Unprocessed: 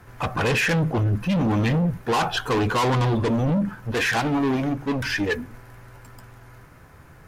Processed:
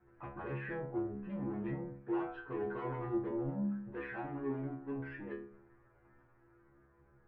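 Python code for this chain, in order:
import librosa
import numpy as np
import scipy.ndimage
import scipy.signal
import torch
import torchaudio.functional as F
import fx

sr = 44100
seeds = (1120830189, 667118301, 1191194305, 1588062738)

y = scipy.signal.sosfilt(scipy.signal.butter(4, 1900.0, 'lowpass', fs=sr, output='sos'), x)
y = fx.peak_eq(y, sr, hz=350.0, db=14.5, octaves=0.23)
y = fx.stiff_resonator(y, sr, f0_hz=67.0, decay_s=0.69, stiffness=0.002)
y = F.gain(torch.from_numpy(y), -7.5).numpy()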